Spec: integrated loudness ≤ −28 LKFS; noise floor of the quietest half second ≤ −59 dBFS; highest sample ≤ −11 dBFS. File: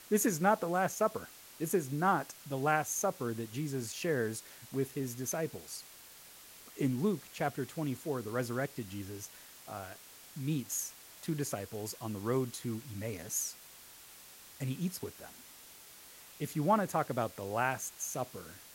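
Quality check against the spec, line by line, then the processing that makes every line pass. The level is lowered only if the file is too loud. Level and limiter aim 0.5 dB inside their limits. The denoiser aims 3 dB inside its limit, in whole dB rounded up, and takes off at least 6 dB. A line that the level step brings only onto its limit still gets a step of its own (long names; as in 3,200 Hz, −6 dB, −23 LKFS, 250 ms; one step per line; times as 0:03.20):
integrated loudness −35.5 LKFS: in spec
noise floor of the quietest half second −54 dBFS: out of spec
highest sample −14.0 dBFS: in spec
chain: broadband denoise 8 dB, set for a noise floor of −54 dBFS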